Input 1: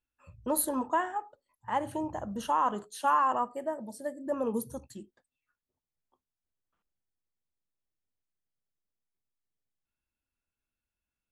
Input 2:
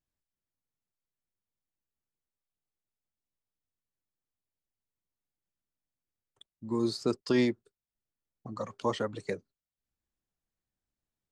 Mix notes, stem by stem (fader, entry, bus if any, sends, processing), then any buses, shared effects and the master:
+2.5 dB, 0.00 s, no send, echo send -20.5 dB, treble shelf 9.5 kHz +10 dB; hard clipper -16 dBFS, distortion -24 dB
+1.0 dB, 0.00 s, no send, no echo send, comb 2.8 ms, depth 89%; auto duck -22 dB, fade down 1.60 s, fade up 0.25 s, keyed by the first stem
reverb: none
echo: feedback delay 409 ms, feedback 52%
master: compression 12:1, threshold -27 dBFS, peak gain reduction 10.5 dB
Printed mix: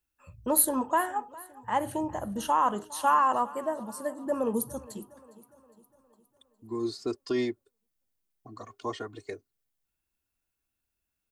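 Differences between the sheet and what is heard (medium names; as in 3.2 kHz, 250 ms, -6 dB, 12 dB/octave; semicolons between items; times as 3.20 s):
stem 2 +1.0 dB -> -6.0 dB; master: missing compression 12:1, threshold -27 dBFS, peak gain reduction 10.5 dB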